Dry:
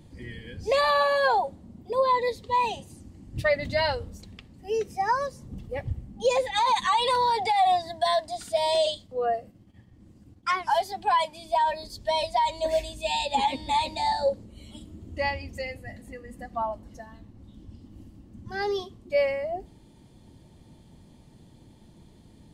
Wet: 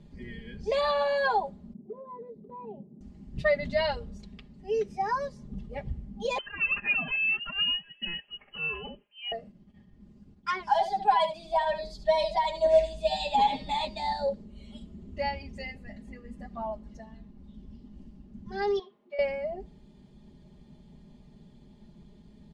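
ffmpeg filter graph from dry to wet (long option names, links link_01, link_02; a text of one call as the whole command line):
ffmpeg -i in.wav -filter_complex "[0:a]asettb=1/sr,asplit=3[link_01][link_02][link_03];[link_01]atrim=end=1.734[link_04];[link_02]atrim=start=1.73:end=3.01,asetpts=PTS-STARTPTS,afade=type=in:duration=0.004:curve=qsin,afade=type=out:start_time=1.276:duration=0.004:curve=qsin,asuperpass=centerf=280:order=4:qfactor=0.7,acompressor=threshold=-36dB:ratio=3:attack=3.2:release=140:knee=1:detection=peak[link_05];[link_03]atrim=start=3.006[link_06];[link_04][link_05]acrossfade=duration=0.004:curve1=hsin:curve2=qsin[link_07];[link_07][link_06]acrossfade=duration=0.004:curve1=qsin:curve2=hsin,asettb=1/sr,asplit=3[link_08][link_09][link_10];[link_08]atrim=end=6.384[link_11];[link_09]atrim=start=6.38:end=9.32,asetpts=PTS-STARTPTS,afade=type=in:duration=0.004:curve=qsin,afade=type=out:start_time=2.936:duration=0.004:curve=qsin,highpass=frequency=820:width=0.5412,highpass=frequency=820:width=1.3066,bandreject=frequency=2100:width=8,lowpass=frequency=3100:width_type=q:width=0.5098,lowpass=frequency=3100:width_type=q:width=0.6013,lowpass=frequency=3100:width_type=q:width=0.9,lowpass=frequency=3100:width_type=q:width=2.563,afreqshift=-3600[link_12];[link_10]atrim=start=9.316[link_13];[link_11][link_12]acrossfade=duration=0.004:curve1=hsin:curve2=qsin[link_14];[link_14][link_13]acrossfade=duration=0.004:curve1=qsin:curve2=hsin,asettb=1/sr,asplit=3[link_15][link_16][link_17];[link_15]atrim=end=10.714[link_18];[link_16]atrim=start=10.71:end=13.85,asetpts=PTS-STARTPTS,afade=type=in:duration=0.004:curve=qsin,afade=type=out:start_time=3.136:duration=0.004:curve=qsin,equalizer=frequency=770:width=5.4:gain=5.5,aecho=1:1:6.4:0.57,atrim=end_sample=138474,aecho=1:1:72:0.316,atrim=end_sample=138474[link_19];[link_17]atrim=start=13.846[link_20];[link_18][link_19]acrossfade=duration=0.004:curve1=hsin:curve2=qsin[link_21];[link_21][link_20]acrossfade=duration=0.004:curve1=qsin:curve2=hsin,asettb=1/sr,asplit=3[link_22][link_23][link_24];[link_22]atrim=end=18.794[link_25];[link_23]atrim=start=18.79:end=19.19,asetpts=PTS-STARTPTS,afade=type=in:duration=0.004:curve=qsin,afade=type=out:start_time=0.396:duration=0.004:curve=qsin,acompressor=threshold=-28dB:ratio=6:attack=3.2:release=140:knee=1:detection=peak,highpass=580,lowpass=2400,asplit=2[link_26][link_27];[link_27]adelay=20,volume=-13.5dB[link_28];[link_26][link_28]amix=inputs=2:normalize=0,atrim=end_sample=17640[link_29];[link_24]atrim=start=19.186[link_30];[link_25][link_29]acrossfade=duration=0.004:curve1=hsin:curve2=qsin[link_31];[link_31][link_30]acrossfade=duration=0.004:curve1=qsin:curve2=hsin,lowpass=5500,lowshelf=frequency=310:gain=6,aecho=1:1:4.9:0.92,volume=-7dB" out.wav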